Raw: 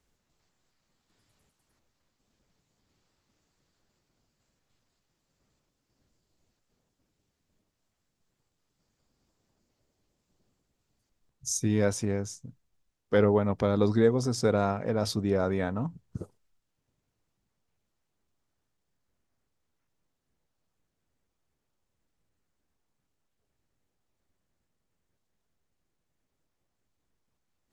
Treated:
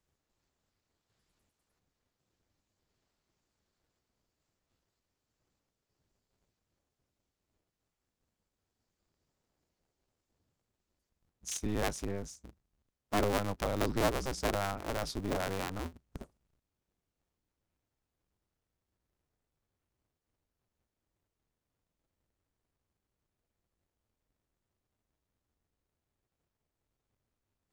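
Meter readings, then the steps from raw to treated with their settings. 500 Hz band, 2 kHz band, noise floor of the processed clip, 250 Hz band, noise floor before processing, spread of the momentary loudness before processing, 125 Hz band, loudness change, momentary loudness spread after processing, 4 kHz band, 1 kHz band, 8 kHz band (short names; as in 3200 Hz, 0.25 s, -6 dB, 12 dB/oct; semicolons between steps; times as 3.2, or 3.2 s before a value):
-9.0 dB, -1.5 dB, under -85 dBFS, -9.5 dB, -81 dBFS, 16 LU, -9.0 dB, -7.5 dB, 17 LU, -1.5 dB, -1.0 dB, -6.0 dB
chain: cycle switcher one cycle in 2, inverted; gain -7.5 dB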